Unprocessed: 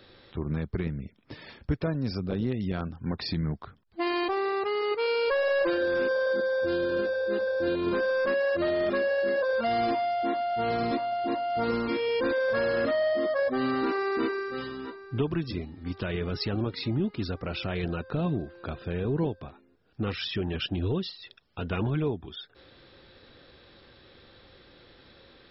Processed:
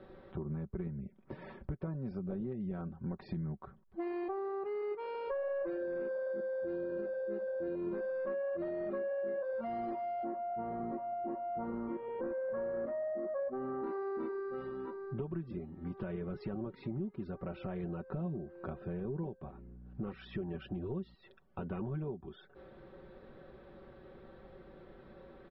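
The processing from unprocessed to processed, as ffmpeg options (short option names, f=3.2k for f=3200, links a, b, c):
-filter_complex "[0:a]asettb=1/sr,asplit=3[a][b][c];[a]atrim=end=10.244[d];[b]atrim=start=10.24:end=13.84,asetpts=PTS-STARTPTS,afade=t=in:d=0.004:c=qsin,afade=t=out:st=3.596:d=0.004:c=qsin,lowpass=1.6k[e];[c]atrim=start=13.836[f];[d][e]acrossfade=d=0.004:c1=hsin:c2=qsin[g];[g][f]acrossfade=d=0.004:c1=qsin:c2=hsin,asettb=1/sr,asplit=3[h][i][j];[h]atrim=end=19.424[k];[i]atrim=start=19.42:end=21.15,asetpts=PTS-STARTPTS,afade=t=in:d=0.004:c=qsin,afade=t=out:st=1.726:d=0.004:c=qsin,aeval=exprs='val(0)+0.00282*(sin(2*PI*60*n/s)+sin(2*PI*2*60*n/s)/2+sin(2*PI*3*60*n/s)/3+sin(2*PI*4*60*n/s)/4+sin(2*PI*5*60*n/s)/5)':c=same[l];[j]atrim=start=21.146[m];[k][l]acrossfade=d=0.004:c1=hsin:c2=qsin[n];[n][m]acrossfade=d=0.004:c1=qsin:c2=hsin,lowpass=1.1k,aecho=1:1:5.3:0.62,acompressor=threshold=-41dB:ratio=3,volume=1dB"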